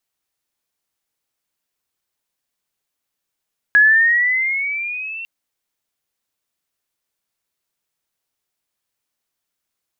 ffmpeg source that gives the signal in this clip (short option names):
-f lavfi -i "aevalsrc='pow(10,(-7-20*t/1.5)/20)*sin(2*PI*1670*1.5/(8.5*log(2)/12)*(exp(8.5*log(2)/12*t/1.5)-1))':d=1.5:s=44100"